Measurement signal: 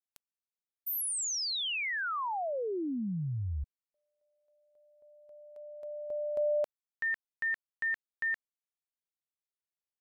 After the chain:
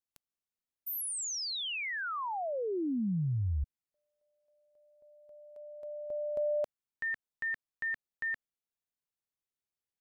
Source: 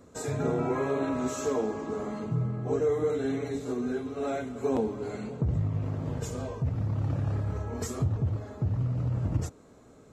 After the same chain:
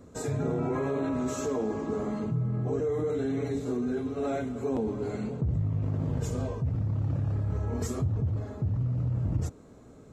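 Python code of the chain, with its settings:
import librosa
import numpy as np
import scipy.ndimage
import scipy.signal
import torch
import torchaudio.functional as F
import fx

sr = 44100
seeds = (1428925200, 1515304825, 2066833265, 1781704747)

p1 = fx.low_shelf(x, sr, hz=370.0, db=7.0)
p2 = fx.over_compress(p1, sr, threshold_db=-28.0, ratio=-1.0)
p3 = p1 + (p2 * librosa.db_to_amplitude(-1.0))
y = p3 * librosa.db_to_amplitude(-8.5)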